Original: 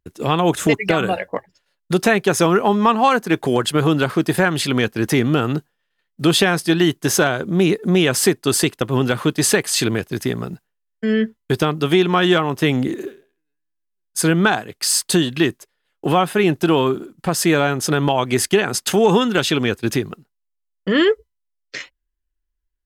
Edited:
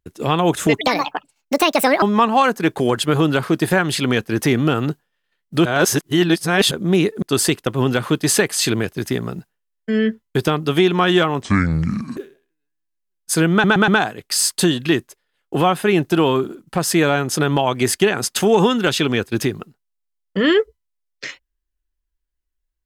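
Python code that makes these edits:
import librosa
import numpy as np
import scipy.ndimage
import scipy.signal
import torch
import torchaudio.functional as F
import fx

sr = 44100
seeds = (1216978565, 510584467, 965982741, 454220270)

y = fx.edit(x, sr, fx.speed_span(start_s=0.81, length_s=1.88, speed=1.55),
    fx.reverse_span(start_s=6.32, length_s=1.06),
    fx.cut(start_s=7.89, length_s=0.48),
    fx.speed_span(start_s=12.57, length_s=0.47, speed=0.63),
    fx.stutter(start_s=14.39, slice_s=0.12, count=4), tone=tone)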